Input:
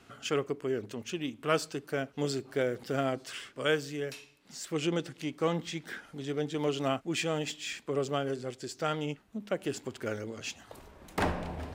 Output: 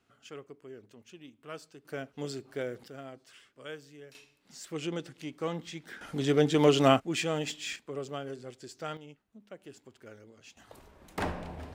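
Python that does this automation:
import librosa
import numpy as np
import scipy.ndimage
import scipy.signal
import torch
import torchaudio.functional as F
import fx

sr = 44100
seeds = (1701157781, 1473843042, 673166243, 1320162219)

y = fx.gain(x, sr, db=fx.steps((0.0, -15.0), (1.85, -5.5), (2.88, -14.5), (4.15, -4.5), (6.01, 8.5), (7.0, 0.5), (7.76, -6.5), (8.97, -15.0), (10.57, -3.5)))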